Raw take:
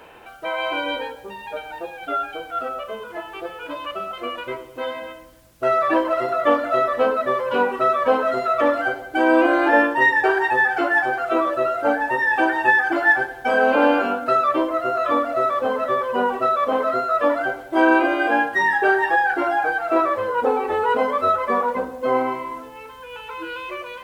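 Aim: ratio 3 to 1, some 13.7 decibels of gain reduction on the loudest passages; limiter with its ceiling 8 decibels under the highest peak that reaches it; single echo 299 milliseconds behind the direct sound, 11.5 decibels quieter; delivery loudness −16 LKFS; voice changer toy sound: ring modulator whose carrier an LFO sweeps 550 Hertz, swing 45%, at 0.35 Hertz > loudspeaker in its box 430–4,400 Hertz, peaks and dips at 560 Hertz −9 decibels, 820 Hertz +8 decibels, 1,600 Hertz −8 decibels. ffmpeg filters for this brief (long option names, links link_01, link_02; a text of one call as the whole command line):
ffmpeg -i in.wav -af "acompressor=threshold=-31dB:ratio=3,alimiter=level_in=1dB:limit=-24dB:level=0:latency=1,volume=-1dB,aecho=1:1:299:0.266,aeval=exprs='val(0)*sin(2*PI*550*n/s+550*0.45/0.35*sin(2*PI*0.35*n/s))':channel_layout=same,highpass=430,equalizer=frequency=560:width_type=q:width=4:gain=-9,equalizer=frequency=820:width_type=q:width=4:gain=8,equalizer=frequency=1600:width_type=q:width=4:gain=-8,lowpass=frequency=4400:width=0.5412,lowpass=frequency=4400:width=1.3066,volume=21dB" out.wav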